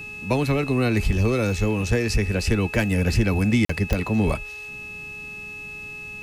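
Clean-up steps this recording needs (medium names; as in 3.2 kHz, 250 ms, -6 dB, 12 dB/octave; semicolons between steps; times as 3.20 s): de-click; de-hum 418.3 Hz, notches 32; band-stop 2.6 kHz, Q 30; interpolate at 3.65 s, 44 ms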